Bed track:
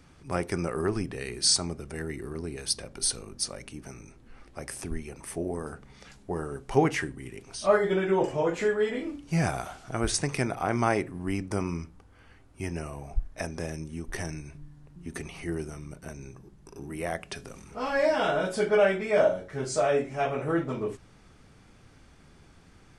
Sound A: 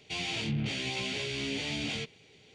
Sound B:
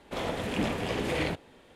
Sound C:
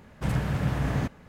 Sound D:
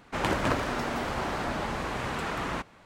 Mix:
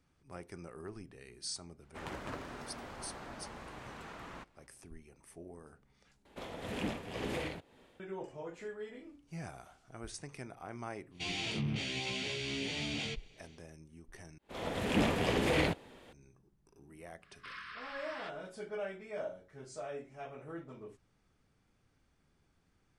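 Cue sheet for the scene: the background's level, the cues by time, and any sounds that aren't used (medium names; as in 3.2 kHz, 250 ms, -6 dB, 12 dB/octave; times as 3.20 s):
bed track -18 dB
1.82 s: add D -16 dB
6.25 s: replace with B -6 dB + tremolo 1.9 Hz, depth 60%
11.10 s: add A -3.5 dB, fades 0.10 s
14.38 s: replace with B + fade-in on the opening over 0.57 s
17.22 s: add C -6.5 dB + brick-wall FIR band-pass 1–5.5 kHz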